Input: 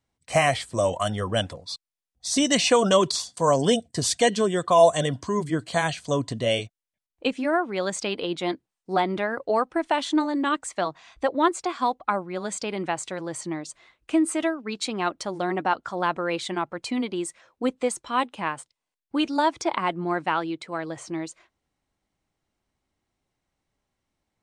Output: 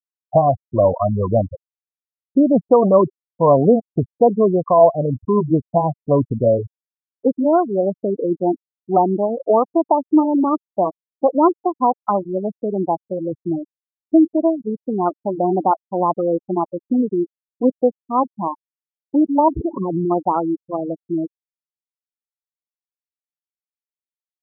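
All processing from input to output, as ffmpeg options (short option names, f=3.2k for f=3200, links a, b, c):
-filter_complex "[0:a]asettb=1/sr,asplit=3[a][b][c];[a]atrim=end=19.484[d];[b]atrim=start=19.48:end=20.11,asetpts=PTS-STARTPTS,afade=t=in:d=0.004:c=qsin,afade=t=out:st=0.626:d=0.004:c=qsin,aeval=exprs='val(0)+0.5*0.0237*sgn(val(0))':c=same,lowshelf=f=590:t=q:w=1.5:g=8,acompressor=threshold=-26dB:ratio=12:attack=3.2:release=140:knee=1:detection=peak[e];[c]atrim=start=20.106[f];[d][e]acrossfade=d=0.004:c1=hsin:c2=qsin[g];[g][f]acrossfade=d=0.004:c1=qsin:c2=hsin,lowpass=f=1k:w=0.5412,lowpass=f=1k:w=1.3066,afftfilt=real='re*gte(hypot(re,im),0.0891)':imag='im*gte(hypot(re,im),0.0891)':win_size=1024:overlap=0.75,dynaudnorm=f=130:g=3:m=9.5dB"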